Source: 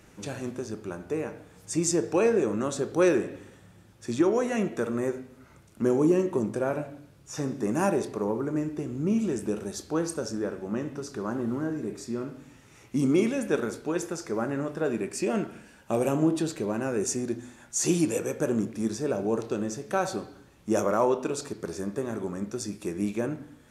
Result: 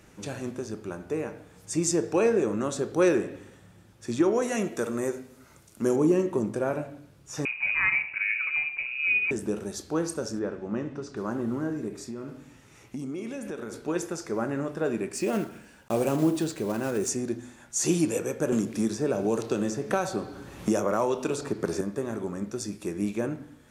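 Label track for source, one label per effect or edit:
4.420000	5.960000	bass and treble bass −3 dB, treble +8 dB
7.450000	9.310000	voice inversion scrambler carrier 2,700 Hz
10.390000	11.170000	high-frequency loss of the air 97 metres
11.880000	13.880000	downward compressor, threshold −32 dBFS
15.140000	17.100000	one scale factor per block 5 bits
18.520000	21.810000	multiband upward and downward compressor depth 100%

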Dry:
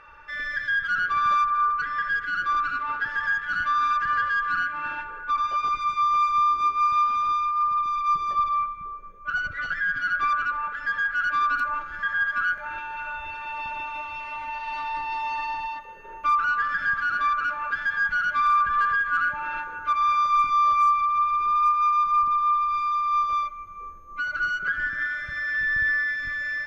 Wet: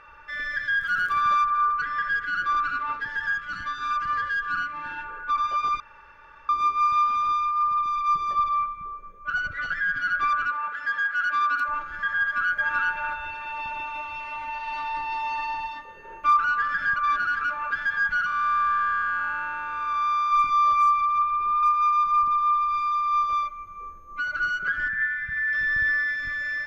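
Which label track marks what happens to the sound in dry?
0.800000	1.200000	surface crackle 190 per second −38 dBFS
2.930000	5.040000	phaser whose notches keep moving one way falling 1.7 Hz
5.800000	6.490000	fill with room tone
10.510000	11.680000	high-pass filter 330 Hz 6 dB per octave
12.200000	12.750000	delay throw 380 ms, feedback 15%, level −0.5 dB
15.640000	16.370000	flutter between parallel walls apart 4.5 metres, dies away in 0.23 s
16.960000	17.410000	reverse
18.260000	20.320000	spectrum smeared in time width 427 ms
21.220000	21.630000	high-frequency loss of the air 230 metres
24.880000	25.530000	drawn EQ curve 240 Hz 0 dB, 370 Hz −27 dB, 800 Hz −22 dB, 1,800 Hz +4 dB, 5,300 Hz −18 dB

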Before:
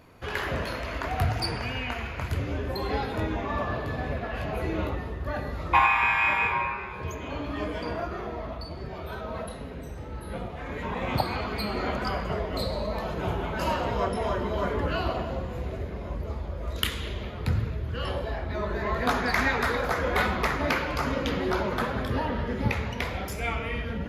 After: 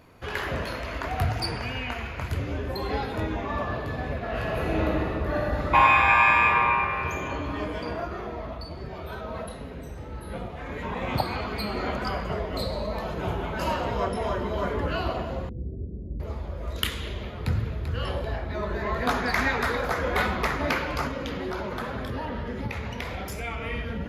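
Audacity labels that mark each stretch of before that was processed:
4.190000	7.180000	thrown reverb, RT60 2.8 s, DRR −2.5 dB
15.490000	16.200000	inverse Chebyshev low-pass filter stop band from 1,600 Hz, stop band 70 dB
17.260000	17.970000	delay throw 390 ms, feedback 45%, level −8.5 dB
21.070000	23.620000	downward compressor 2.5 to 1, threshold −29 dBFS

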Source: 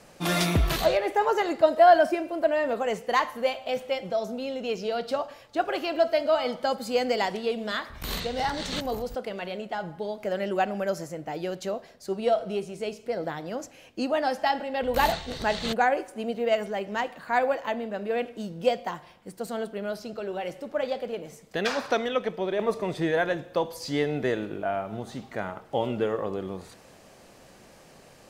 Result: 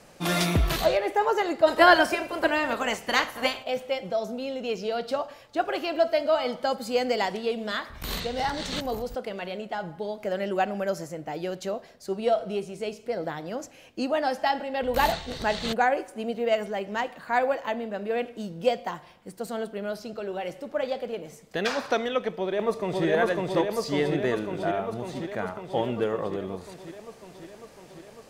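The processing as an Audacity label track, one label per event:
1.660000	3.620000	ceiling on every frequency bin ceiling under each frame's peak by 18 dB
7.750000	10.220000	floating-point word with a short mantissa of 8 bits
22.340000	23.060000	delay throw 550 ms, feedback 75%, level −0.5 dB

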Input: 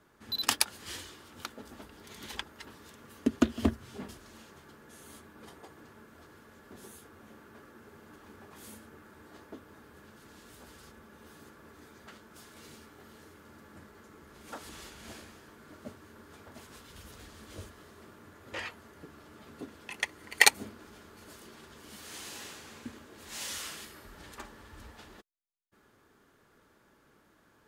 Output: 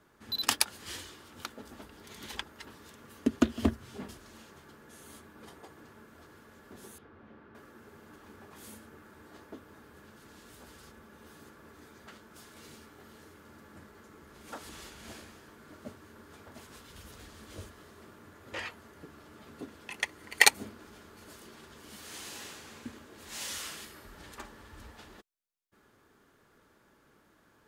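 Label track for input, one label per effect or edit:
6.980000	7.550000	high-frequency loss of the air 310 metres

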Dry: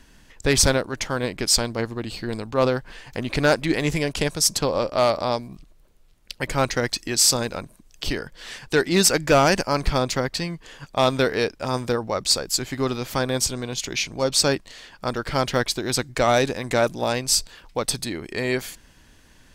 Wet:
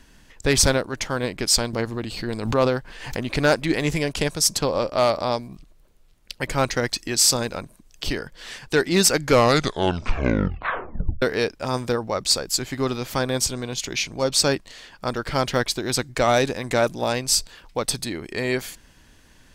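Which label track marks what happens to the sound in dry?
1.730000	3.210000	background raised ahead of every attack at most 68 dB per second
9.140000	9.140000	tape stop 2.08 s

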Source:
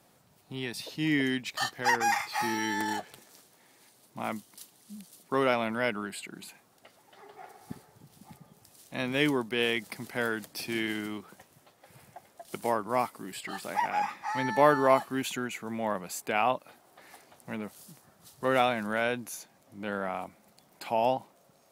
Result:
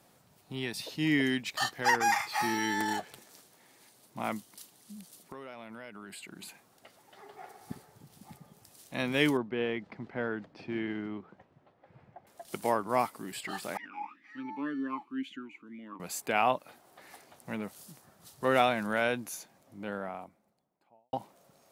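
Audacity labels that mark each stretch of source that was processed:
4.490000	6.410000	downward compressor, threshold −42 dBFS
9.370000	12.270000	head-to-tape spacing loss at 10 kHz 41 dB
13.770000	16.000000	formant filter swept between two vowels i-u 2 Hz
19.250000	21.130000	fade out and dull

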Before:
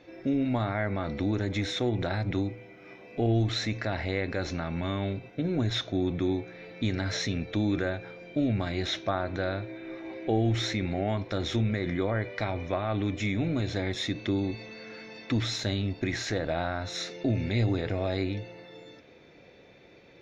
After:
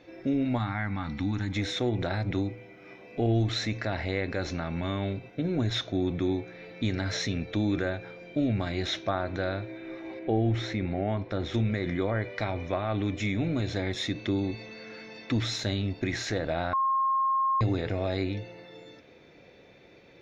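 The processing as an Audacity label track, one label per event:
0.580000	1.560000	gain on a spectral selection 310–730 Hz −14 dB
10.190000	11.540000	low-pass filter 2,000 Hz 6 dB per octave
16.730000	17.610000	beep over 1,070 Hz −22.5 dBFS

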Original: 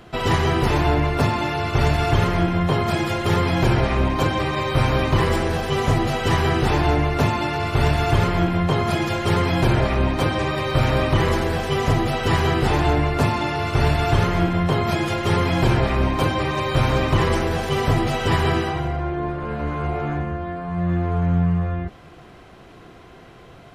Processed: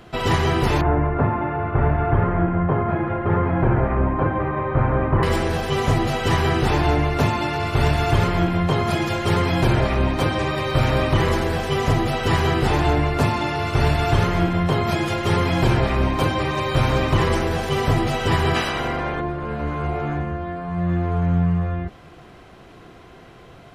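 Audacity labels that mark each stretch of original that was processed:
0.810000	5.230000	low-pass filter 1,700 Hz 24 dB per octave
18.540000	19.200000	ceiling on every frequency bin ceiling under each frame's peak by 18 dB

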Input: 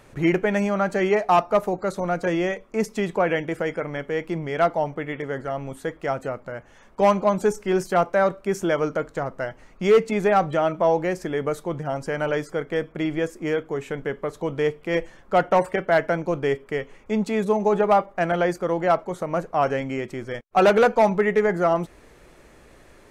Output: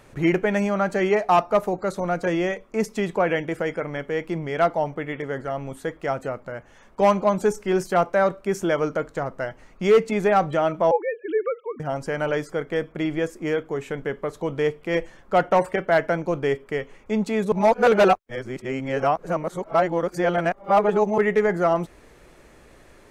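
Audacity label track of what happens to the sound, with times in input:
10.910000	11.800000	three sine waves on the formant tracks
17.520000	21.180000	reverse

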